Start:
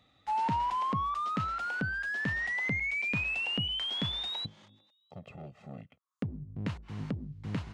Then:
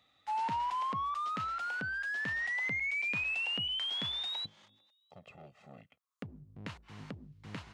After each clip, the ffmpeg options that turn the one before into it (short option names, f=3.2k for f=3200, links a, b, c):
-af "lowshelf=f=460:g=-11,volume=-1dB"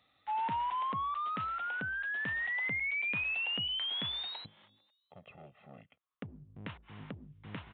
-af "aresample=8000,aresample=44100"